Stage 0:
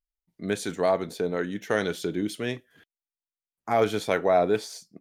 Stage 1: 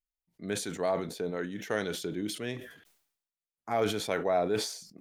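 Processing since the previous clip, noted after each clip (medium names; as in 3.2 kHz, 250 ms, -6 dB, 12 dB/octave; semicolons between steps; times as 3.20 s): decay stretcher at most 80 dB/s; trim -6.5 dB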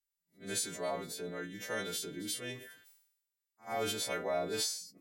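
partials quantised in pitch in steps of 2 st; reverse echo 79 ms -17.5 dB; trim -7 dB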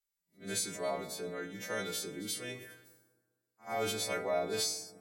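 reverberation RT60 1.6 s, pre-delay 5 ms, DRR 11 dB; WMA 32 kbps 48 kHz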